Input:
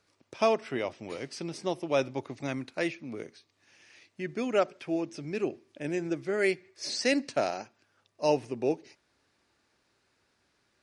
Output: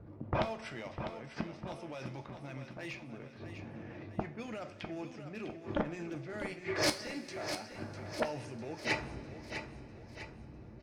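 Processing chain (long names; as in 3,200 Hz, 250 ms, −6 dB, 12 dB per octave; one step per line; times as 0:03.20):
low-pass that shuts in the quiet parts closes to 320 Hz, open at −26 dBFS
parametric band 380 Hz −7 dB 0.88 octaves
transient designer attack −3 dB, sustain +6 dB
brickwall limiter −26.5 dBFS, peak gain reduction 11 dB
hard clipping −28.5 dBFS, distortion −26 dB
gate with flip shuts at −40 dBFS, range −35 dB
sine wavefolder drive 13 dB, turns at −36 dBFS
repeating echo 651 ms, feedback 48%, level −9 dB
coupled-rooms reverb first 0.33 s, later 4.2 s, from −21 dB, DRR 6.5 dB
level +11.5 dB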